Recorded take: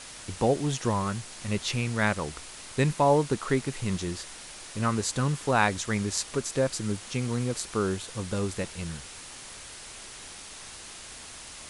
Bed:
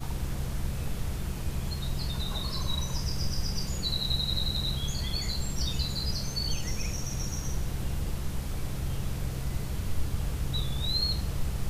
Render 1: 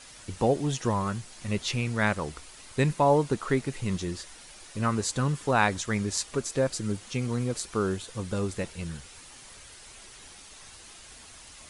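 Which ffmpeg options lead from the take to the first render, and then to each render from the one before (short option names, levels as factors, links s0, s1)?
-af "afftdn=nr=7:nf=-44"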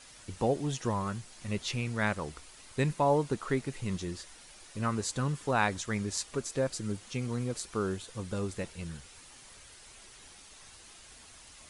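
-af "volume=0.596"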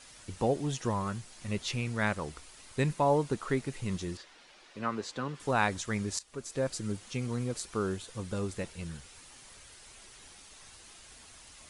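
-filter_complex "[0:a]asettb=1/sr,asplit=3[s0][s1][s2];[s0]atrim=end=4.174[s3];[s1]atrim=start=4.17:end=5.4,asetpts=PTS-STARTPTS,afade=t=in:d=0.004:c=qsin,afade=t=out:st=1.226:d=0.004:c=qsin,acrossover=split=210 5000:gain=0.2 1 0.112[s4][s5][s6];[s4][s5][s6]amix=inputs=3:normalize=0[s7];[s2]atrim=start=5.396[s8];[s3][s7]acrossfade=d=0.004:c1=hsin:c2=qsin[s9];[s9][s8]acrossfade=d=0.004:c1=qsin:c2=hsin,asplit=2[s10][s11];[s10]atrim=end=6.19,asetpts=PTS-STARTPTS,afade=t=out:st=6.186:d=0.004:c=hsin:silence=0.141254[s12];[s11]atrim=start=6.19,asetpts=PTS-STARTPTS,afade=t=in:d=0.5:silence=0.141254[s13];[s12][s13]concat=n=2:v=0:a=1"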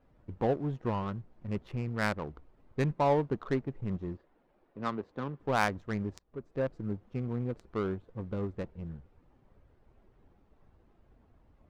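-af "adynamicsmooth=sensitivity=2.5:basefreq=520"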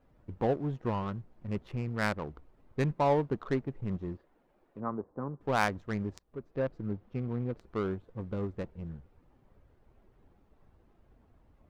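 -filter_complex "[0:a]asettb=1/sr,asplit=3[s0][s1][s2];[s0]atrim=end=4.804[s3];[s1]atrim=start=4.8:end=5.41,asetpts=PTS-STARTPTS,afade=t=in:d=0.004:c=qsin,afade=t=out:st=0.606:d=0.004:c=qsin,lowpass=f=1200:w=0.5412,lowpass=f=1200:w=1.3066[s4];[s2]atrim=start=5.406[s5];[s3][s4]acrossfade=d=0.004:c1=hsin:c2=qsin[s6];[s6][s5]acrossfade=d=0.004:c1=qsin:c2=hsin,asettb=1/sr,asplit=3[s7][s8][s9];[s7]atrim=end=6.374[s10];[s8]atrim=start=6.37:end=7.61,asetpts=PTS-STARTPTS,afade=t=in:d=0.004:c=qsin,afade=t=out:st=1.236:d=0.004:c=qsin,equalizer=f=8200:t=o:w=0.77:g=-8.5[s11];[s9]atrim=start=7.606[s12];[s10][s11]acrossfade=d=0.004:c1=hsin:c2=qsin[s13];[s13][s12]acrossfade=d=0.004:c1=qsin:c2=hsin"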